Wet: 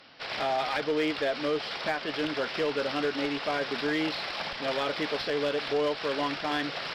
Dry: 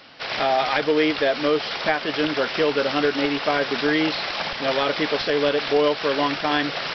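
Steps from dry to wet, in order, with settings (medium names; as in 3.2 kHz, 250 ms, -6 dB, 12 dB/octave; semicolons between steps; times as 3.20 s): saturation -11.5 dBFS, distortion -21 dB; Chebyshev shaper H 6 -31 dB, 8 -29 dB, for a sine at -12 dBFS; trim -7 dB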